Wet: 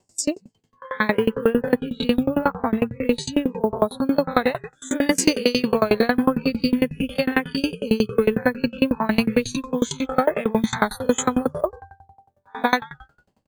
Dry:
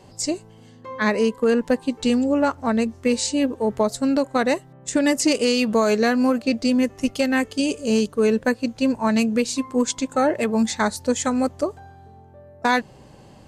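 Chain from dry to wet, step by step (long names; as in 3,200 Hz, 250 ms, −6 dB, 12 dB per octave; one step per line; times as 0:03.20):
peak hold with a rise ahead of every peak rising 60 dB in 0.35 s
0:02.23–0:04.02: high-shelf EQ 3,400 Hz −5 dB
in parallel at −1.5 dB: downward compressor 6 to 1, threshold −29 dBFS, peak gain reduction 14.5 dB
on the sum: log-companded quantiser 6 bits
on a send: echo with shifted repeats 149 ms, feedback 35%, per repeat −100 Hz, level −16 dB
on the sum: noise reduction from a noise print of the clip's start 25 dB
tremolo with a ramp in dB decaying 11 Hz, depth 26 dB
level +5 dB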